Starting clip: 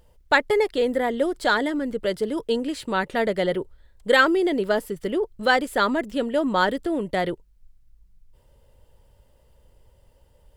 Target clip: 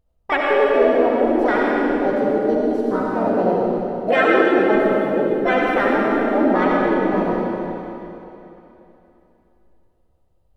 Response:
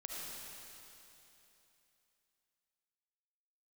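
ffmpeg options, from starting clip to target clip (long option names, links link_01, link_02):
-filter_complex "[0:a]asplit=2[link_01][link_02];[link_02]asetrate=58866,aresample=44100,atempo=0.749154,volume=-2dB[link_03];[link_01][link_03]amix=inputs=2:normalize=0,afwtdn=0.0794,tiltshelf=frequency=650:gain=4[link_04];[1:a]atrim=start_sample=2205[link_05];[link_04][link_05]afir=irnorm=-1:irlink=0,volume=4dB"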